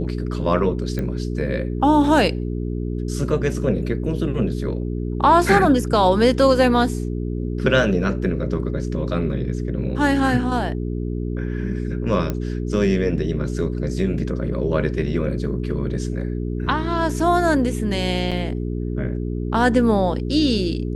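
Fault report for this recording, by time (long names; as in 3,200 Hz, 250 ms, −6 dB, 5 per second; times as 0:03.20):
mains hum 60 Hz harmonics 7 −25 dBFS
0:00.99: click −15 dBFS
0:12.30: click −11 dBFS
0:18.31–0:18.32: drop-out 6.5 ms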